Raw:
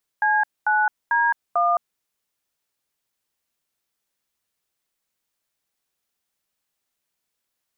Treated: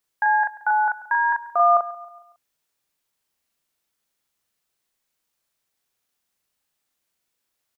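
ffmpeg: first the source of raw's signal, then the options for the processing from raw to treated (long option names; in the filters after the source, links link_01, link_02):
-f lavfi -i "aevalsrc='0.112*clip(min(mod(t,0.445),0.215-mod(t,0.445))/0.002,0,1)*(eq(floor(t/0.445),0)*(sin(2*PI*852*mod(t,0.445))+sin(2*PI*1633*mod(t,0.445)))+eq(floor(t/0.445),1)*(sin(2*PI*852*mod(t,0.445))+sin(2*PI*1477*mod(t,0.445)))+eq(floor(t/0.445),2)*(sin(2*PI*941*mod(t,0.445))+sin(2*PI*1633*mod(t,0.445)))+eq(floor(t/0.445),3)*(sin(2*PI*697*mod(t,0.445))+sin(2*PI*1209*mod(t,0.445))))':duration=1.78:sample_rate=44100"
-filter_complex "[0:a]asplit=2[link_01][link_02];[link_02]adelay=39,volume=-2.5dB[link_03];[link_01][link_03]amix=inputs=2:normalize=0,aecho=1:1:138|276|414|552:0.126|0.0592|0.0278|0.0131"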